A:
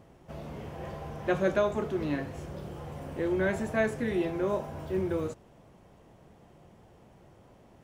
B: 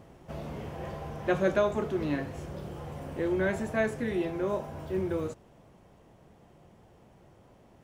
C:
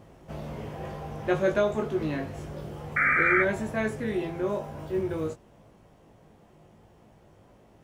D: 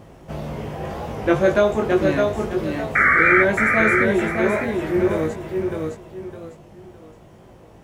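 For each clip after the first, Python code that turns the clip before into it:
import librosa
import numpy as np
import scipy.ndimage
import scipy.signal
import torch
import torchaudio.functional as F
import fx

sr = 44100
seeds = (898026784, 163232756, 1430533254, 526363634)

y1 = fx.rider(x, sr, range_db=3, speed_s=2.0)
y2 = fx.spec_paint(y1, sr, seeds[0], shape='noise', start_s=2.96, length_s=0.47, low_hz=1200.0, high_hz=2400.0, level_db=-24.0)
y2 = fx.doubler(y2, sr, ms=19.0, db=-5.0)
y3 = fx.echo_feedback(y2, sr, ms=611, feedback_pct=31, wet_db=-3.5)
y3 = fx.record_warp(y3, sr, rpm=33.33, depth_cents=100.0)
y3 = y3 * 10.0 ** (7.5 / 20.0)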